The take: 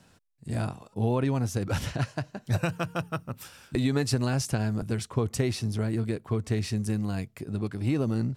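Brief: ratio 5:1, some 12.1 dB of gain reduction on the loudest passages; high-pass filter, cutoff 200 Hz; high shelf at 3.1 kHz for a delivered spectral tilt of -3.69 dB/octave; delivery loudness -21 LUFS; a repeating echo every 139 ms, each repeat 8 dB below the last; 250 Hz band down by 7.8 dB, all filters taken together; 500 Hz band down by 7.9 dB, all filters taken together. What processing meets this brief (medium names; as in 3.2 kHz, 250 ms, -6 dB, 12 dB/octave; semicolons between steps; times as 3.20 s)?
high-pass 200 Hz; peaking EQ 250 Hz -5 dB; peaking EQ 500 Hz -8.5 dB; treble shelf 3.1 kHz +5.5 dB; compression 5:1, threshold -37 dBFS; feedback delay 139 ms, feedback 40%, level -8 dB; trim +19.5 dB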